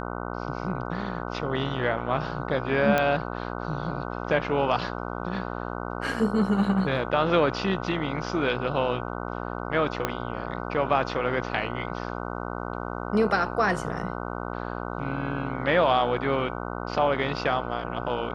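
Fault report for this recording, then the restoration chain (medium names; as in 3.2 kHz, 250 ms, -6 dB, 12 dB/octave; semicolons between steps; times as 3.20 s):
buzz 60 Hz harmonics 25 -33 dBFS
2.98 s: pop -10 dBFS
10.05 s: pop -10 dBFS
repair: de-click; de-hum 60 Hz, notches 25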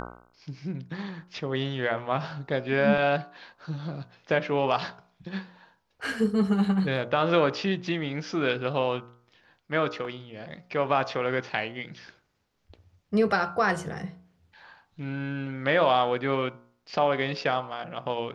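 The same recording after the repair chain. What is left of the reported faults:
10.05 s: pop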